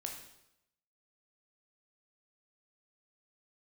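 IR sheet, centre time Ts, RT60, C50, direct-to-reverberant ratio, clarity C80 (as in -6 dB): 30 ms, 0.85 s, 5.5 dB, 1.5 dB, 8.5 dB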